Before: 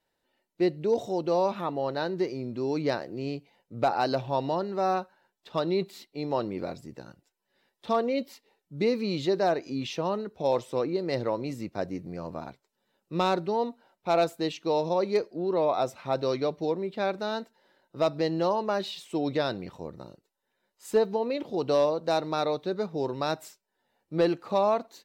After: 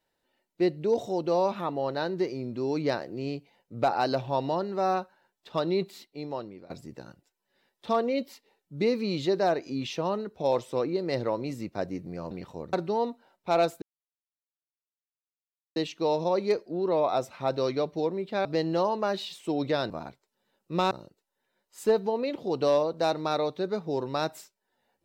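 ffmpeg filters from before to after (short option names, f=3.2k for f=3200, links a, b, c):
-filter_complex "[0:a]asplit=8[a][b][c][d][e][f][g][h];[a]atrim=end=6.7,asetpts=PTS-STARTPTS,afade=t=out:st=5.89:d=0.81:silence=0.0891251[i];[b]atrim=start=6.7:end=12.312,asetpts=PTS-STARTPTS,afade=t=in:d=0.004:c=hsin:silence=0.0891251[j];[c]atrim=start=19.558:end=19.982[k];[d]atrim=start=13.318:end=14.41,asetpts=PTS-STARTPTS,afade=t=out:st=1.088:d=0.004:c=hsin,apad=pad_dur=1.94[l];[e]atrim=start=14.41:end=17.102,asetpts=PTS-STARTPTS,afade=t=in:d=0.004:c=hsin[m];[f]atrim=start=18.108:end=19.562[n];[g]atrim=start=12.308:end=13.322[o];[h]atrim=start=19.978[p];[i][j]concat=n=2:v=0:a=1[q];[q][k]acrossfade=d=0.004:c1=hsin:c2=hsin[r];[l][m]concat=n=2:v=0:a=1[s];[r][s]acrossfade=d=0.004:c1=hsin:c2=hsin[t];[t][n]acrossfade=d=0.004:c1=hsin:c2=hsin[u];[u][o]acrossfade=d=0.004:c1=hsin:c2=hsin[v];[v][p]acrossfade=d=0.004:c1=hsin:c2=hsin"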